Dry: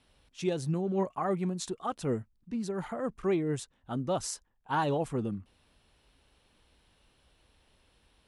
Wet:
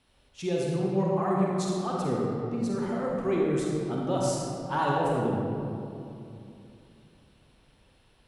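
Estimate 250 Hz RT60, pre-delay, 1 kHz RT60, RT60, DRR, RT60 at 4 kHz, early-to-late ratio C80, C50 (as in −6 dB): 3.4 s, 37 ms, 2.6 s, 2.7 s, −3.5 dB, 1.4 s, −0.5 dB, −2.5 dB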